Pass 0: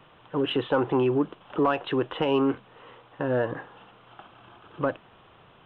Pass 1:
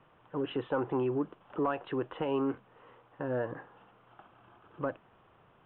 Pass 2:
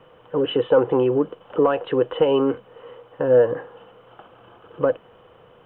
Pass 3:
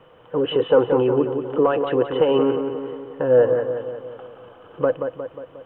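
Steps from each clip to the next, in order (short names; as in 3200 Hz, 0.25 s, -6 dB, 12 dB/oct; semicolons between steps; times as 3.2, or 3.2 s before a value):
LPF 2200 Hz 12 dB/oct; gain -7.5 dB
small resonant body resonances 490/3000 Hz, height 14 dB, ringing for 45 ms; gain +8.5 dB
darkening echo 0.179 s, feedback 57%, low-pass 2700 Hz, level -6.5 dB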